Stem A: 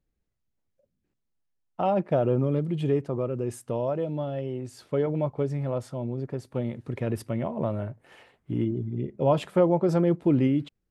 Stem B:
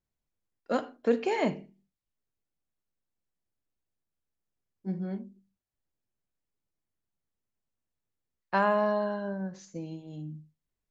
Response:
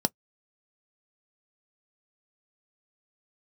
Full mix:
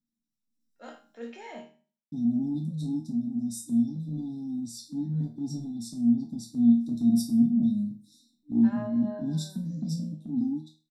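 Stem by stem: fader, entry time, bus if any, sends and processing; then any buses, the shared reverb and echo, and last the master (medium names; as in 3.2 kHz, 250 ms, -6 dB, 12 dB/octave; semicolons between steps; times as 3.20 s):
+3.0 dB, 0.00 s, muted 1.28–2.12 s, send -4 dB, FFT band-reject 300–3500 Hz; reverb removal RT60 0.64 s; resonant low shelf 220 Hz -6.5 dB, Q 1.5
-5.5 dB, 0.10 s, send -14 dB, high-pass 1.5 kHz 6 dB/octave; auto duck -12 dB, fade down 0.90 s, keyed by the first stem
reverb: on, RT60 0.10 s, pre-delay 3 ms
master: level rider gain up to 10 dB; transient shaper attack -7 dB, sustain +4 dB; chord resonator D#2 sus4, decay 0.37 s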